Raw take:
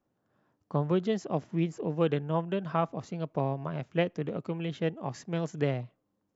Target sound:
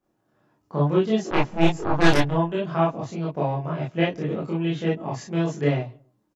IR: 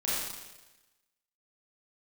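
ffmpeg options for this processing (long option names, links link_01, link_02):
-filter_complex "[0:a]asplit=3[link_01][link_02][link_03];[link_01]afade=type=out:start_time=1.3:duration=0.02[link_04];[link_02]aeval=exprs='0.2*(cos(1*acos(clip(val(0)/0.2,-1,1)))-cos(1*PI/2))+0.0562*(cos(6*acos(clip(val(0)/0.2,-1,1)))-cos(6*PI/2))+0.0631*(cos(7*acos(clip(val(0)/0.2,-1,1)))-cos(7*PI/2))+0.02*(cos(8*acos(clip(val(0)/0.2,-1,1)))-cos(8*PI/2))':channel_layout=same,afade=type=in:start_time=1.3:duration=0.02,afade=type=out:start_time=2.29:duration=0.02[link_05];[link_03]afade=type=in:start_time=2.29:duration=0.02[link_06];[link_04][link_05][link_06]amix=inputs=3:normalize=0,asplit=2[link_07][link_08];[link_08]adelay=139,lowpass=frequency=830:poles=1,volume=-24dB,asplit=2[link_09][link_10];[link_10]adelay=139,lowpass=frequency=830:poles=1,volume=0.33[link_11];[link_07][link_09][link_11]amix=inputs=3:normalize=0[link_12];[1:a]atrim=start_sample=2205,atrim=end_sample=4410,asetrate=66150,aresample=44100[link_13];[link_12][link_13]afir=irnorm=-1:irlink=0,volume=4dB"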